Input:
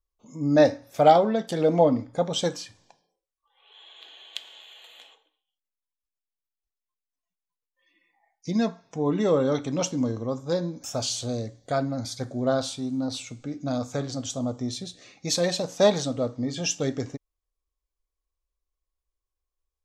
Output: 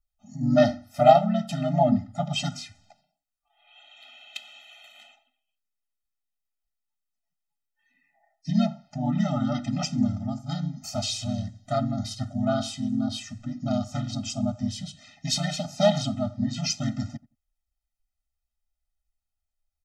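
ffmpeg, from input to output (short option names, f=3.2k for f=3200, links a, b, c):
-filter_complex "[0:a]asplit=2[a][b];[b]adelay=86,lowpass=f=1.2k:p=1,volume=-19.5dB,asplit=2[c][d];[d]adelay=86,lowpass=f=1.2k:p=1,volume=0.16[e];[a][c][e]amix=inputs=3:normalize=0,asplit=2[f][g];[g]asetrate=37084,aresample=44100,atempo=1.18921,volume=-1dB[h];[f][h]amix=inputs=2:normalize=0,afftfilt=real='re*eq(mod(floor(b*sr/1024/300),2),0)':imag='im*eq(mod(floor(b*sr/1024/300),2),0)':win_size=1024:overlap=0.75"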